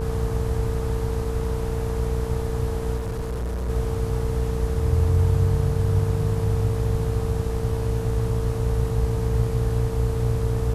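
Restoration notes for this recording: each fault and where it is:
buzz 60 Hz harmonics 21 -27 dBFS
tone 450 Hz -30 dBFS
2.96–3.7 clipped -24.5 dBFS

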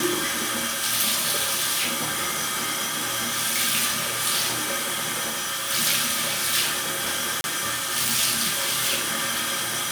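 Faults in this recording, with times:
5.29–5.71 clipped -24.5 dBFS
7.41–7.44 gap 31 ms

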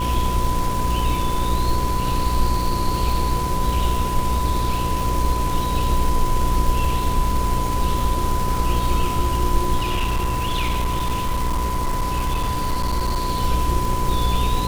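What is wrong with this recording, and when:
buzz 60 Hz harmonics 9 -25 dBFS
crackle 520/s -25 dBFS
tone 1000 Hz -24 dBFS
9.77–13.29 clipped -17 dBFS

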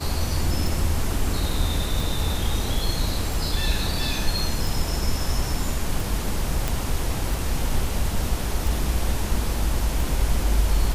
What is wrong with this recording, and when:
tick 45 rpm
6.68 pop

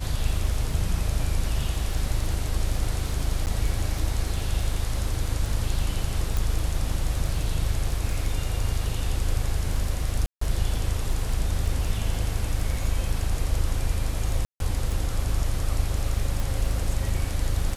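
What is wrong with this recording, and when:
crackle 22/s -30 dBFS
3.46–3.47 gap 9.6 ms
6.37 pop
10.26–10.41 gap 0.154 s
14.45–14.6 gap 0.152 s
16.4 pop

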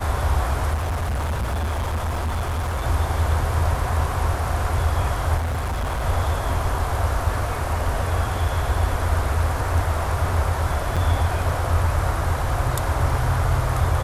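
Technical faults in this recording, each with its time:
0.73–2.85 clipped -21 dBFS
5.37–6.03 clipped -21.5 dBFS
10.96–10.97 gap 6 ms

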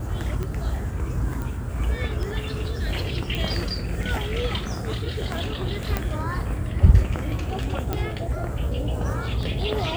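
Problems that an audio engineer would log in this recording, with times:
tick 33 1/3 rpm -18 dBFS
1.42 pop
3.35 pop
5.97 pop
7.93 pop

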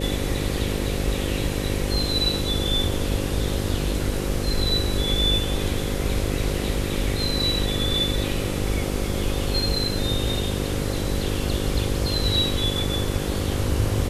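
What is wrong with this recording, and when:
buzz 50 Hz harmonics 11 -28 dBFS

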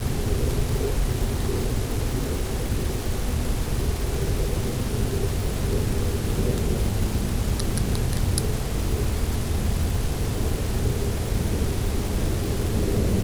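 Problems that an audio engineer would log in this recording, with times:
crackle 460/s -29 dBFS

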